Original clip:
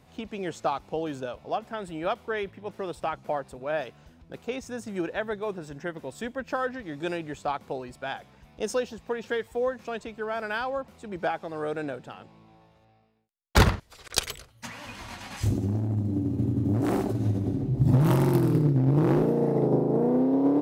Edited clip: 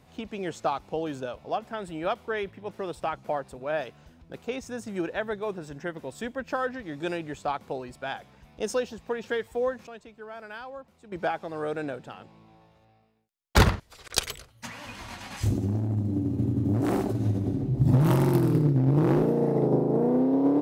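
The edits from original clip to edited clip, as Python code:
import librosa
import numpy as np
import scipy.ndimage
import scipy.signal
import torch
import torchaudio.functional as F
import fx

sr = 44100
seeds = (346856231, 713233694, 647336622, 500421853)

y = fx.edit(x, sr, fx.clip_gain(start_s=9.87, length_s=1.25, db=-10.0), tone=tone)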